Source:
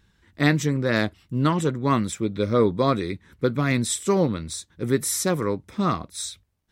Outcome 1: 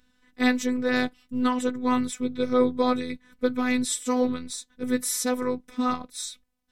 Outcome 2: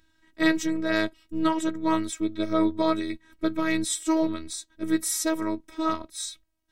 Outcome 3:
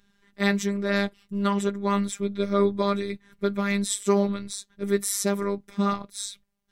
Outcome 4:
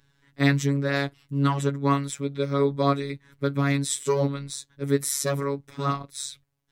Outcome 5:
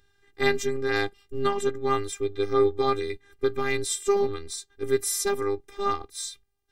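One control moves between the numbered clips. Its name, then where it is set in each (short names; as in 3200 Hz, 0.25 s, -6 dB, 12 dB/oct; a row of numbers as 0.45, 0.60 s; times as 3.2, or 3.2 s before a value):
robotiser, frequency: 250, 320, 200, 140, 400 Hz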